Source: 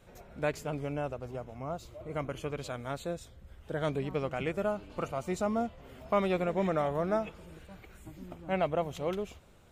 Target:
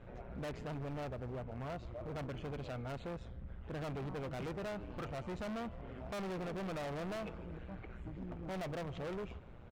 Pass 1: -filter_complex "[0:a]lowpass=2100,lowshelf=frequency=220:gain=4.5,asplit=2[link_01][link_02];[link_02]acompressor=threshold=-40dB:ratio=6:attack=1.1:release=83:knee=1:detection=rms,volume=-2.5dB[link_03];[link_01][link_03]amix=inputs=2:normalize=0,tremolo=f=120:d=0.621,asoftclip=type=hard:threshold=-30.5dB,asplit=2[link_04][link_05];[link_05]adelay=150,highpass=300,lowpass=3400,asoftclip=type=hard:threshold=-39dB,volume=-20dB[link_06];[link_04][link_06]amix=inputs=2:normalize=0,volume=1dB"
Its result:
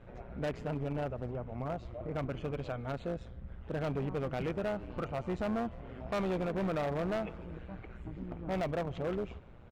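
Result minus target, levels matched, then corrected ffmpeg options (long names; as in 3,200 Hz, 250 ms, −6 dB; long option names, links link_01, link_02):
downward compressor: peak gain reduction −6.5 dB; hard clipping: distortion −6 dB
-filter_complex "[0:a]lowpass=2100,lowshelf=frequency=220:gain=4.5,asplit=2[link_01][link_02];[link_02]acompressor=threshold=-48dB:ratio=6:attack=1.1:release=83:knee=1:detection=rms,volume=-2.5dB[link_03];[link_01][link_03]amix=inputs=2:normalize=0,tremolo=f=120:d=0.621,asoftclip=type=hard:threshold=-40dB,asplit=2[link_04][link_05];[link_05]adelay=150,highpass=300,lowpass=3400,asoftclip=type=hard:threshold=-39dB,volume=-20dB[link_06];[link_04][link_06]amix=inputs=2:normalize=0,volume=1dB"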